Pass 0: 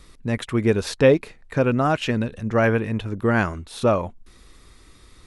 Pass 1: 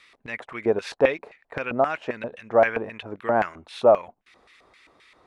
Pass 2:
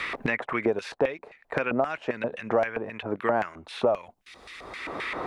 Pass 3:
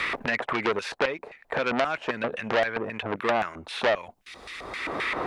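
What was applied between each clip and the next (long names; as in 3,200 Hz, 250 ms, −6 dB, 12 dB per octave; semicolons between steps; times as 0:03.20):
auto-filter band-pass square 3.8 Hz 710–2,300 Hz; dynamic equaliser 2,800 Hz, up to −6 dB, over −46 dBFS, Q 0.78; level +8 dB
multiband upward and downward compressor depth 100%; level −3.5 dB
saturating transformer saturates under 2,600 Hz; level +4.5 dB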